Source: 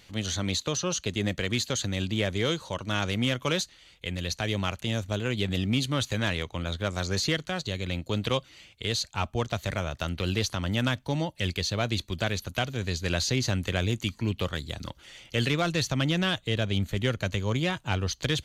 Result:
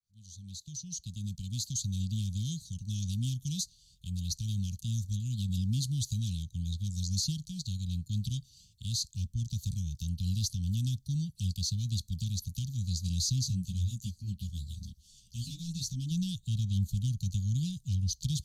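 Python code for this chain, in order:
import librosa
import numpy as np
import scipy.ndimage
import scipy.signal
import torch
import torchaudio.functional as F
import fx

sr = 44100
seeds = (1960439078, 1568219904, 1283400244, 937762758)

y = fx.fade_in_head(x, sr, length_s=2.06)
y = scipy.signal.sosfilt(scipy.signal.cheby2(4, 50, [400.0, 2100.0], 'bandstop', fs=sr, output='sos'), y)
y = fx.chorus_voices(y, sr, voices=4, hz=1.4, base_ms=13, depth_ms=3.0, mix_pct=55, at=(13.44, 16.1), fade=0.02)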